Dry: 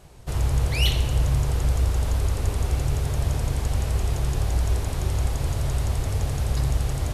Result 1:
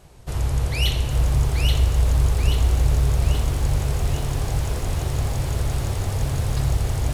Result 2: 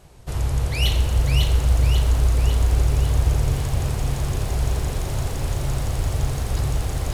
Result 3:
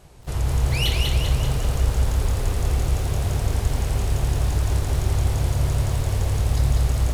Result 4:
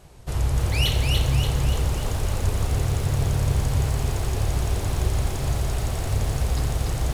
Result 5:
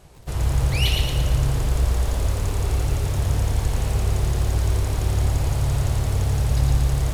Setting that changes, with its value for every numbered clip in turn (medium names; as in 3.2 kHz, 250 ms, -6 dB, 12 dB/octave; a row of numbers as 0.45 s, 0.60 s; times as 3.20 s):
bit-crushed delay, time: 831 ms, 549 ms, 195 ms, 290 ms, 113 ms